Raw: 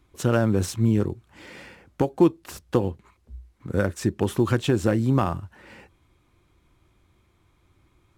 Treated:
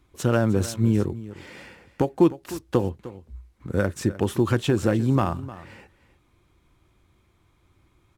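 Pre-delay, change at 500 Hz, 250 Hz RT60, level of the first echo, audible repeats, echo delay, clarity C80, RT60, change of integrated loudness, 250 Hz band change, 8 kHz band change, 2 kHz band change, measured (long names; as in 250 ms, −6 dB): no reverb audible, 0.0 dB, no reverb audible, −16.5 dB, 1, 305 ms, no reverb audible, no reverb audible, 0.0 dB, 0.0 dB, 0.0 dB, 0.0 dB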